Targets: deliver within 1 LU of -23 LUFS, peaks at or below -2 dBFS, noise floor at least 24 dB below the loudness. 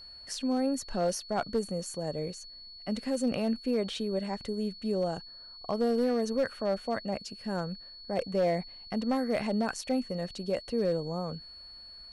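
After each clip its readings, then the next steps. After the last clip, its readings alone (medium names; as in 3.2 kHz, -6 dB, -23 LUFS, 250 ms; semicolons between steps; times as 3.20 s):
clipped samples 0.8%; clipping level -21.5 dBFS; steady tone 4.4 kHz; tone level -46 dBFS; loudness -32.0 LUFS; peak level -21.5 dBFS; loudness target -23.0 LUFS
-> clip repair -21.5 dBFS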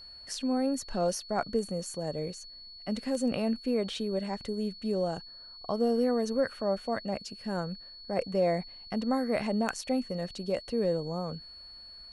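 clipped samples 0.0%; steady tone 4.4 kHz; tone level -46 dBFS
-> band-stop 4.4 kHz, Q 30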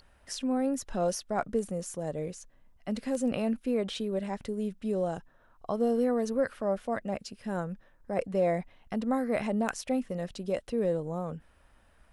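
steady tone not found; loudness -32.0 LUFS; peak level -12.5 dBFS; loudness target -23.0 LUFS
-> trim +9 dB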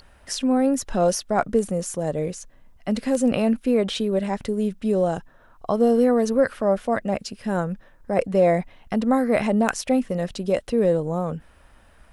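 loudness -23.0 LUFS; peak level -3.5 dBFS; noise floor -53 dBFS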